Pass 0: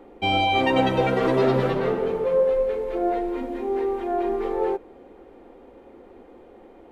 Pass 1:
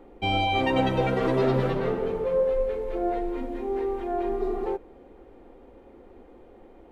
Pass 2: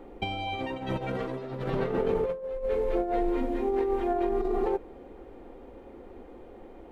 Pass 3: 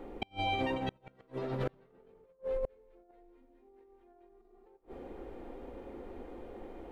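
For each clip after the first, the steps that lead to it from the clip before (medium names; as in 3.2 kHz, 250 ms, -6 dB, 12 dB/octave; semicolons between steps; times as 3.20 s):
spectral replace 4.42–4.64 s, 220–3600 Hz before; bass shelf 100 Hz +10.5 dB; trim -4 dB
compressor with a negative ratio -28 dBFS, ratio -0.5
de-hum 47.08 Hz, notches 29; inverted gate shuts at -23 dBFS, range -35 dB; trim +1 dB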